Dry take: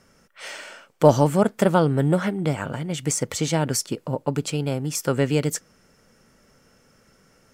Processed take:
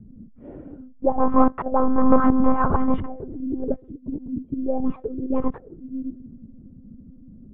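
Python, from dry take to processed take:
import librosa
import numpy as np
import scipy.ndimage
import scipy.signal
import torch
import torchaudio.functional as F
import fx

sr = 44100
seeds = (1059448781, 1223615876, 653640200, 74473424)

p1 = fx.tilt_eq(x, sr, slope=-2.5)
p2 = fx.auto_swell(p1, sr, attack_ms=567.0)
p3 = 10.0 ** (-19.5 / 20.0) * (np.abs((p2 / 10.0 ** (-19.5 / 20.0) + 3.0) % 4.0 - 2.0) - 1.0)
p4 = p2 + F.gain(torch.from_numpy(p3), -8.0).numpy()
p5 = p4 + 10.0 ** (-17.0 / 20.0) * np.pad(p4, (int(608 * sr / 1000.0), 0))[:len(p4)]
p6 = fx.lpc_monotone(p5, sr, seeds[0], pitch_hz=260.0, order=16)
p7 = fx.envelope_lowpass(p6, sr, base_hz=200.0, top_hz=1100.0, q=5.9, full_db=-20.0, direction='up')
y = F.gain(torch.from_numpy(p7), 2.0).numpy()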